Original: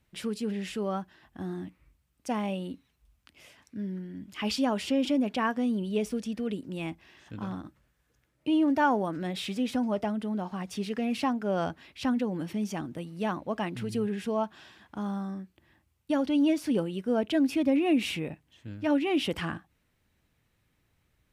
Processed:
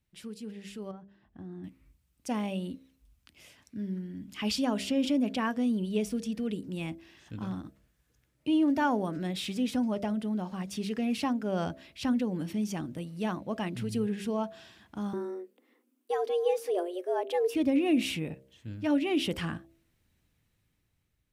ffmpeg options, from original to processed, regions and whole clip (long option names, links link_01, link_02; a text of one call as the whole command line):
ffmpeg -i in.wav -filter_complex "[0:a]asettb=1/sr,asplit=3[link_01][link_02][link_03];[link_01]atrim=end=0.914[link_04];[link_02]atrim=start=0.91:end=1.64,asetpts=PTS-STARTPTS,afade=type=in:duration=0.004:curve=qsin,afade=type=out:start_time=0.726:duration=0.004:curve=qsin,lowpass=frequency=1200:poles=1,acompressor=threshold=-38dB:ratio=3:attack=3.2:release=140:knee=1:detection=peak[link_05];[link_03]atrim=start=1.636[link_06];[link_04][link_05]acrossfade=duration=0.004:curve1=hsin:curve2=qsin[link_07];[link_07][link_06]acrossfade=duration=0.004:curve1=qsin:curve2=hsin,asettb=1/sr,asplit=3[link_08][link_09][link_10];[link_08]atrim=end=15.134[link_11];[link_09]atrim=start=15.13:end=17.55,asetpts=PTS-STARTPTS,afade=type=in:duration=0.004:curve=qsin,afade=type=out:start_time=2.416:duration=0.004:curve=qsin,afreqshift=180,equalizer=frequency=4400:width_type=o:width=2:gain=-7[link_12];[link_10]atrim=start=17.546[link_13];[link_11][link_12]acrossfade=duration=0.004:curve1=hsin:curve2=qsin[link_14];[link_14][link_13]acrossfade=duration=0.004:curve1=qsin:curve2=hsin,equalizer=frequency=1000:width=0.4:gain=-6,bandreject=frequency=66.24:width_type=h:width=4,bandreject=frequency=132.48:width_type=h:width=4,bandreject=frequency=198.72:width_type=h:width=4,bandreject=frequency=264.96:width_type=h:width=4,bandreject=frequency=331.2:width_type=h:width=4,bandreject=frequency=397.44:width_type=h:width=4,bandreject=frequency=463.68:width_type=h:width=4,bandreject=frequency=529.92:width_type=h:width=4,bandreject=frequency=596.16:width_type=h:width=4,bandreject=frequency=662.4:width_type=h:width=4,dynaudnorm=framelen=380:gausssize=7:maxgain=9dB,volume=-7dB" out.wav